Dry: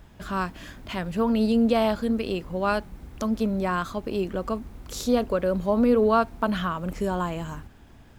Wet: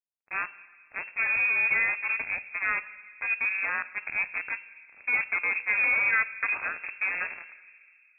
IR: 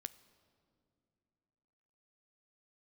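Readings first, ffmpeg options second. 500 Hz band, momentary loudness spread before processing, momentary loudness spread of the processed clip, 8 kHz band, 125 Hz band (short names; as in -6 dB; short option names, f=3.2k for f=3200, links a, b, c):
-23.5 dB, 12 LU, 13 LU, under -35 dB, under -25 dB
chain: -filter_complex "[0:a]acrusher=bits=3:mix=0:aa=0.5[a];[1:a]atrim=start_sample=2205[b];[a][b]afir=irnorm=-1:irlink=0,lowpass=f=2.3k:t=q:w=0.5098,lowpass=f=2.3k:t=q:w=0.6013,lowpass=f=2.3k:t=q:w=0.9,lowpass=f=2.3k:t=q:w=2.563,afreqshift=-2700"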